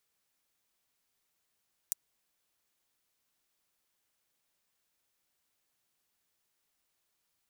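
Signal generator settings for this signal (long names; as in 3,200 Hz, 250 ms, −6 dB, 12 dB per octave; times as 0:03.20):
closed synth hi-hat, high-pass 7,200 Hz, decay 0.02 s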